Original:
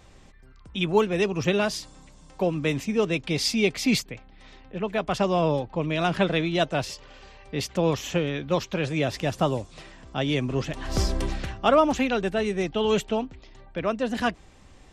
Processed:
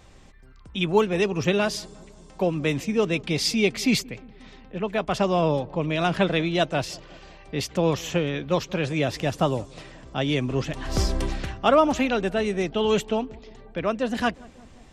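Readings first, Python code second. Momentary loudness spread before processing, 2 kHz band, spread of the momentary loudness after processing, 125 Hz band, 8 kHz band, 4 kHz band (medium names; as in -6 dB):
10 LU, +1.0 dB, 12 LU, +1.0 dB, +1.0 dB, +1.0 dB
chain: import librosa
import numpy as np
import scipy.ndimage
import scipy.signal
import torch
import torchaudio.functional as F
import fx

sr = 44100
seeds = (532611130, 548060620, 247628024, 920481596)

y = fx.echo_filtered(x, sr, ms=178, feedback_pct=70, hz=990.0, wet_db=-22.5)
y = y * librosa.db_to_amplitude(1.0)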